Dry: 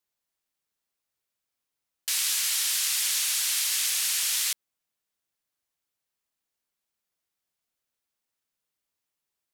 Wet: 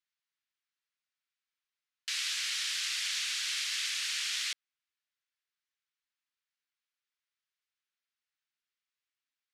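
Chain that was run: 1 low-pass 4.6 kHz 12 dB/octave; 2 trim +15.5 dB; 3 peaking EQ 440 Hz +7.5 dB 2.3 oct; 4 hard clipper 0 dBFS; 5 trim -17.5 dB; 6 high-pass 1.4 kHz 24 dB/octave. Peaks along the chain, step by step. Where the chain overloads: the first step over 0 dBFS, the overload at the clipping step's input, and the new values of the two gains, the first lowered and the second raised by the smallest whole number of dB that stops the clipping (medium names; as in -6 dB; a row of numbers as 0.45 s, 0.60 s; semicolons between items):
-20.0 dBFS, -4.5 dBFS, -3.5 dBFS, -3.5 dBFS, -21.0 dBFS, -20.5 dBFS; nothing clips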